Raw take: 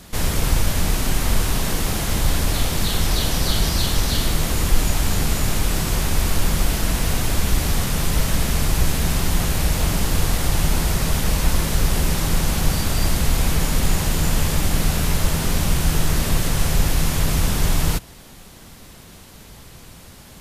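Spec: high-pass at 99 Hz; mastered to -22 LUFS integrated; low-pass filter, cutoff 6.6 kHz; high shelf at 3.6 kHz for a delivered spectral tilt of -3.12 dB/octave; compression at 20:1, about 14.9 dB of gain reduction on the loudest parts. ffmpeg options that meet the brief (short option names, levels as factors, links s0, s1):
-af "highpass=99,lowpass=6600,highshelf=f=3600:g=7,acompressor=threshold=0.02:ratio=20,volume=5.62"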